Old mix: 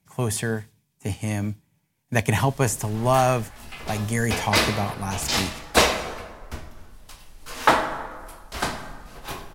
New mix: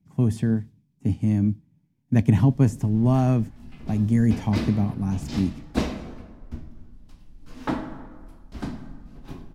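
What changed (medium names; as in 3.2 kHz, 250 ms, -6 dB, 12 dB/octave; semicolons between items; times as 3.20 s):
speech +4.0 dB; master: add FFT filter 100 Hz 0 dB, 270 Hz +5 dB, 440 Hz -10 dB, 1.2 kHz -16 dB, 5.3 kHz -17 dB, 9.6 kHz -23 dB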